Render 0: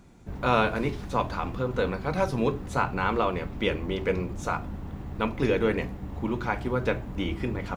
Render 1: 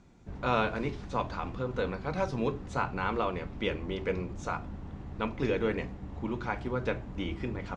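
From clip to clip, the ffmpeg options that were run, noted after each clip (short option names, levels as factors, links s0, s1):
-af "lowpass=f=7500:w=0.5412,lowpass=f=7500:w=1.3066,volume=0.562"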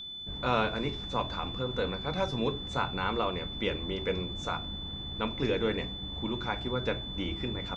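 -af "aeval=exprs='val(0)+0.0112*sin(2*PI*3500*n/s)':c=same"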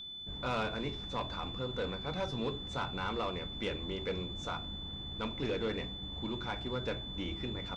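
-af "asoftclip=type=tanh:threshold=0.0668,volume=0.668"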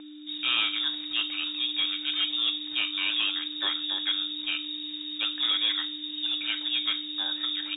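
-af "lowpass=f=3200:t=q:w=0.5098,lowpass=f=3200:t=q:w=0.6013,lowpass=f=3200:t=q:w=0.9,lowpass=f=3200:t=q:w=2.563,afreqshift=-3800,volume=2.51"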